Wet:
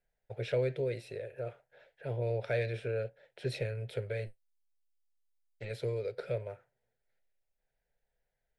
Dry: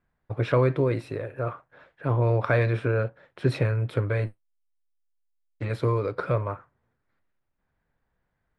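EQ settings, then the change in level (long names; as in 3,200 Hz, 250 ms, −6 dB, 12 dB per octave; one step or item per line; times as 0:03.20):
dynamic equaliser 940 Hz, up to −7 dB, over −41 dBFS, Q 1
parametric band 180 Hz −15 dB 1 octave
phaser with its sweep stopped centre 300 Hz, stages 6
−2.5 dB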